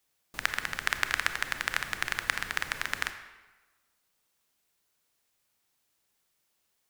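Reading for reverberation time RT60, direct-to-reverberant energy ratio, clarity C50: 1.2 s, 9.0 dB, 10.0 dB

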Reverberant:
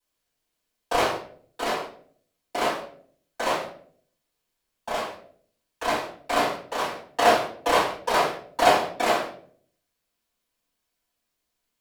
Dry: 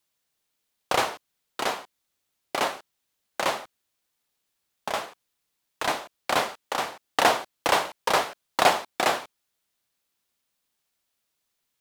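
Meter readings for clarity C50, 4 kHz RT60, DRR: 5.0 dB, 0.35 s, -11.0 dB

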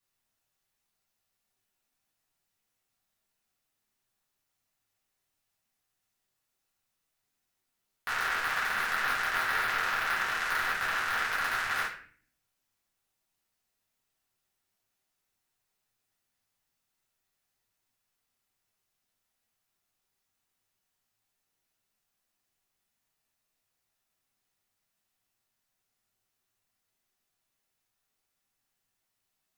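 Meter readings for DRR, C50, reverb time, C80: -8.5 dB, 5.0 dB, 0.45 s, 10.0 dB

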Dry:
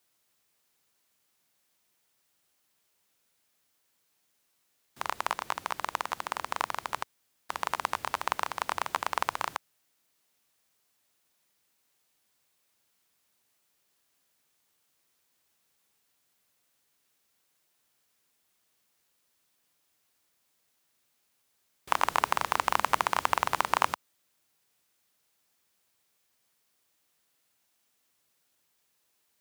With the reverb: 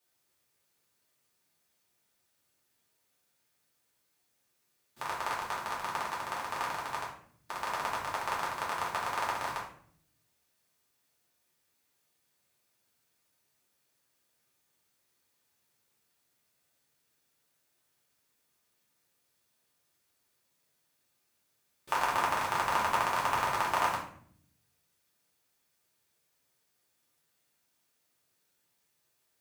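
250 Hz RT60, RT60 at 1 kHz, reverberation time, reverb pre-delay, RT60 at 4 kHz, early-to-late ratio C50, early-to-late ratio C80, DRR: 1.1 s, 0.50 s, 0.60 s, 3 ms, 0.40 s, 5.0 dB, 9.5 dB, -6.5 dB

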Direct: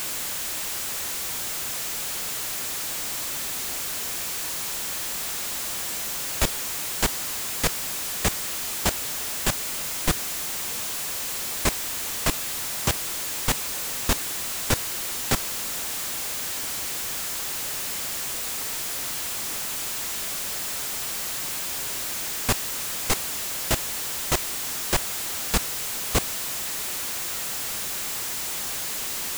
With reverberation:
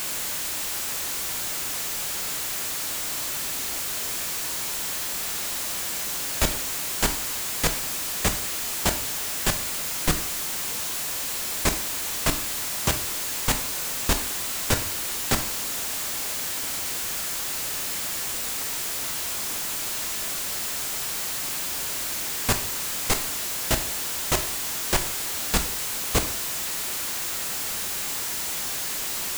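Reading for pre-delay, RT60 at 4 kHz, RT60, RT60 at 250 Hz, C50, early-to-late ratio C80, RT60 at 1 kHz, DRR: 7 ms, 0.50 s, 0.50 s, 0.50 s, 11.5 dB, 15.0 dB, 0.50 s, 7.5 dB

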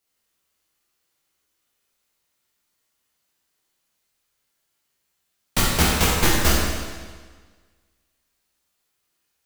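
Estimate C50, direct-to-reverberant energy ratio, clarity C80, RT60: -1.0 dB, -5.5 dB, 1.0 dB, 1.5 s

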